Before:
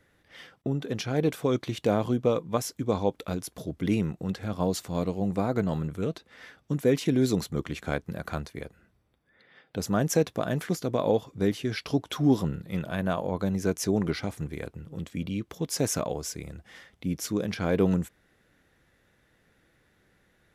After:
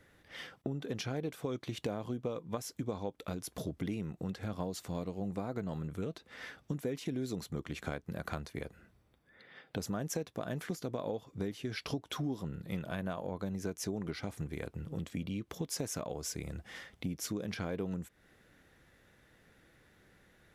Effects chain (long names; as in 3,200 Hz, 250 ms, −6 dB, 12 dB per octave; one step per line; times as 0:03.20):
downward compressor 6 to 1, threshold −36 dBFS, peak gain reduction 18 dB
level +1.5 dB